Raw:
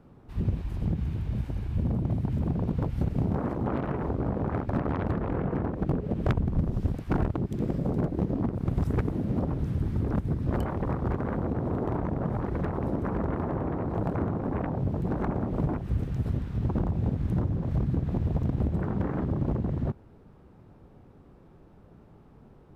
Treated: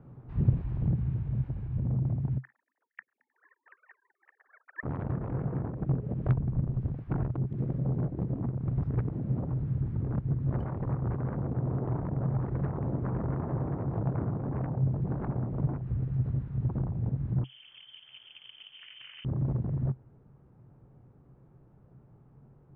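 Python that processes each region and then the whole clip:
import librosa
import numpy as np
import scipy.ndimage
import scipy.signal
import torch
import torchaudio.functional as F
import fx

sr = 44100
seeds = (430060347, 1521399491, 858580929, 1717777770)

y = fx.chain(x, sr, fx.sine_speech(),
    fx.highpass_res(hz=1800.0, q=11.0),
    fx.upward_expand(threshold_db=-42.0, expansion=2.5), at=(2.38, 4.83))
y = fx.chain(y, sr, fx.highpass(hz=220.0, slope=12),
    fx.freq_invert(carrier_hz=3300), at=(17.44, 19.25))
y = scipy.signal.sosfilt(scipy.signal.butter(2, 1900.0, 'lowpass', fs=sr, output='sos'), y)
y = fx.peak_eq(y, sr, hz=130.0, db=13.5, octaves=0.4)
y = fx.rider(y, sr, range_db=10, speed_s=2.0)
y = F.gain(torch.from_numpy(y), -7.5).numpy()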